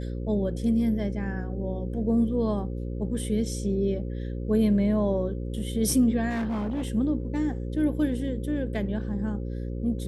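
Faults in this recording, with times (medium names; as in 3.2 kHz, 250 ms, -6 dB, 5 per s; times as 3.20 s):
buzz 60 Hz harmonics 9 -32 dBFS
6.29–6.92 s: clipped -25.5 dBFS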